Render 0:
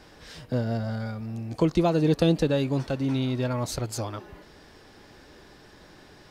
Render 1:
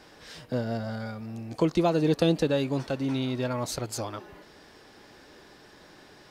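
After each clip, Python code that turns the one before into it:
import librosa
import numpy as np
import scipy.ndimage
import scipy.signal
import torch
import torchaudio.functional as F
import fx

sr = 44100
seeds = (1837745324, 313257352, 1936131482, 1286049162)

y = fx.low_shelf(x, sr, hz=120.0, db=-10.5)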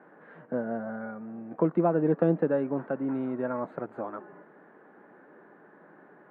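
y = scipy.signal.sosfilt(scipy.signal.ellip(3, 1.0, 50, [170.0, 1600.0], 'bandpass', fs=sr, output='sos'), x)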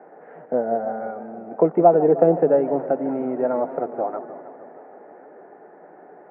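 y = fx.cabinet(x, sr, low_hz=210.0, low_slope=12, high_hz=2100.0, hz=(210.0, 310.0, 440.0, 730.0, 1100.0, 1600.0), db=(-6, -4, 4, 9, -9, -9))
y = fx.echo_warbled(y, sr, ms=155, feedback_pct=73, rate_hz=2.8, cents=174, wet_db=-15.0)
y = y * 10.0 ** (8.0 / 20.0)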